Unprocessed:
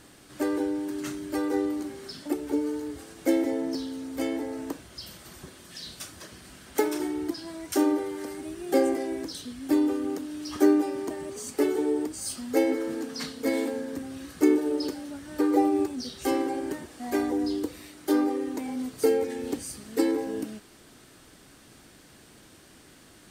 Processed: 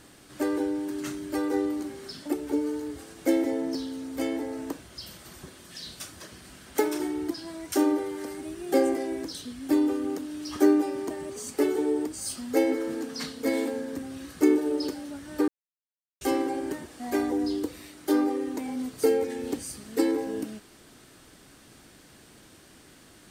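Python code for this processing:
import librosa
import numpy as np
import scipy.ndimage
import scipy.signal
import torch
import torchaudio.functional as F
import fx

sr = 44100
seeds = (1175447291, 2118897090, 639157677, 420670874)

y = fx.edit(x, sr, fx.silence(start_s=15.48, length_s=0.73), tone=tone)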